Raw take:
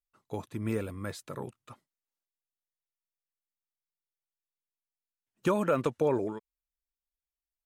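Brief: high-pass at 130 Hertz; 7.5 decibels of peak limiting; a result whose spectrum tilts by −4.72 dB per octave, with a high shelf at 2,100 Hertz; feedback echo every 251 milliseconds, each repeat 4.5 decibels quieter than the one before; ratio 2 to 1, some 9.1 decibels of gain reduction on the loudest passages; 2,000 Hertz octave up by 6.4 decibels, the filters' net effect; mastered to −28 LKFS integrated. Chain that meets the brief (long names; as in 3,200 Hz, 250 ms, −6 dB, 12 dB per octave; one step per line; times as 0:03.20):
high-pass filter 130 Hz
parametric band 2,000 Hz +5 dB
high-shelf EQ 2,100 Hz +6.5 dB
downward compressor 2 to 1, threshold −38 dBFS
brickwall limiter −27.5 dBFS
repeating echo 251 ms, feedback 60%, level −4.5 dB
level +12.5 dB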